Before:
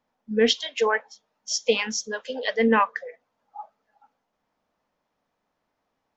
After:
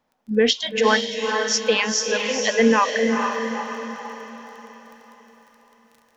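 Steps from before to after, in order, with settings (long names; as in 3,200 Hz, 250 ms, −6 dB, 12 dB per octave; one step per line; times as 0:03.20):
surface crackle 19 per second −42 dBFS
brickwall limiter −12.5 dBFS, peak gain reduction 5 dB
feedback delay with all-pass diffusion 458 ms, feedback 47%, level −4 dB
level +5 dB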